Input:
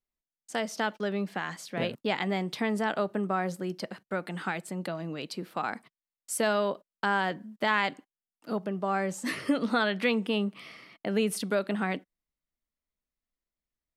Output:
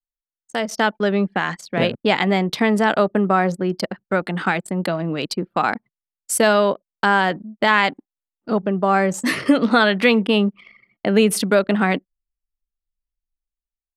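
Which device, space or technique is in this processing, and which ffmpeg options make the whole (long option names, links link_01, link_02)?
voice memo with heavy noise removal: -af "anlmdn=0.251,dynaudnorm=framelen=110:gausssize=11:maxgain=13dB"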